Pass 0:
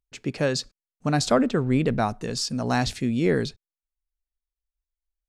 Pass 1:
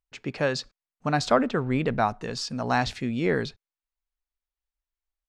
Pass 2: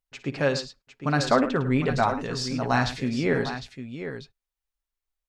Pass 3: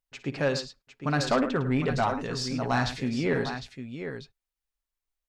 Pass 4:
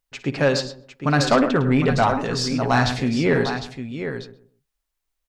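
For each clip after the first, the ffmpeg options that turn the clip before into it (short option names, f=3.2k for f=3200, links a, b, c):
-af "firequalizer=gain_entry='entry(300,0);entry(870,7);entry(9700,-8)':delay=0.05:min_phase=1,volume=-4dB"
-filter_complex "[0:a]aecho=1:1:7.4:0.39,asplit=2[a][b];[b]aecho=0:1:56|106|755:0.178|0.224|0.316[c];[a][c]amix=inputs=2:normalize=0"
-af "asoftclip=type=tanh:threshold=-14.5dB,volume=-1.5dB"
-filter_complex "[0:a]asplit=2[a][b];[b]adelay=130,lowpass=f=810:p=1,volume=-11.5dB,asplit=2[c][d];[d]adelay=130,lowpass=f=810:p=1,volume=0.29,asplit=2[e][f];[f]adelay=130,lowpass=f=810:p=1,volume=0.29[g];[a][c][e][g]amix=inputs=4:normalize=0,volume=7.5dB"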